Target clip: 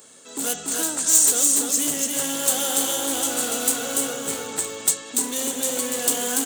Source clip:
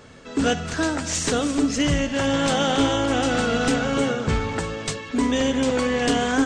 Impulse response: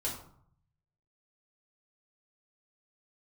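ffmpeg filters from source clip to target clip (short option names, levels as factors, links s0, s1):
-filter_complex "[0:a]volume=10,asoftclip=hard,volume=0.1,highpass=270,asplit=2[s0][s1];[s1]aecho=0:1:289:0.668[s2];[s0][s2]amix=inputs=2:normalize=0,aexciter=amount=7.2:drive=7.2:freq=7400,highshelf=f=3000:t=q:w=1.5:g=6.5,volume=0.501"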